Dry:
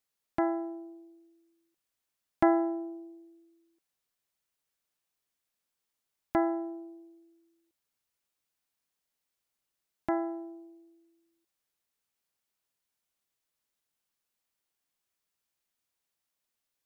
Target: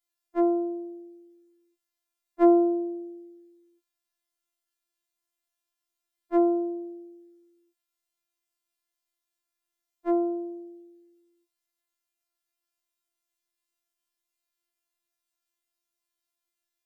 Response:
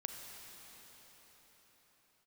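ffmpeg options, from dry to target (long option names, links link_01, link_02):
-af "afftfilt=real='hypot(re,im)*cos(PI*b)':imag='0':win_size=2048:overlap=0.75,afftfilt=real='re*4*eq(mod(b,16),0)':imag='im*4*eq(mod(b,16),0)':win_size=2048:overlap=0.75,volume=-1dB"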